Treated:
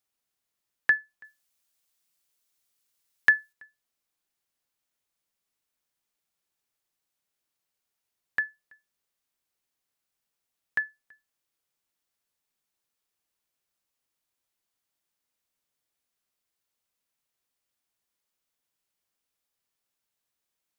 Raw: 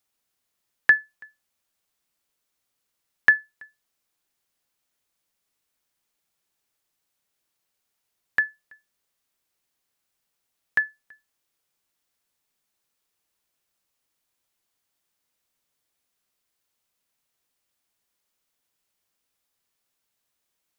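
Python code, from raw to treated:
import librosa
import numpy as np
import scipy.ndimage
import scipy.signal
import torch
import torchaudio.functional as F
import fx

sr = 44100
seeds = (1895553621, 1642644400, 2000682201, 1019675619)

y = fx.high_shelf(x, sr, hz=2700.0, db=9.0, at=(1.24, 3.53))
y = y * 10.0 ** (-5.5 / 20.0)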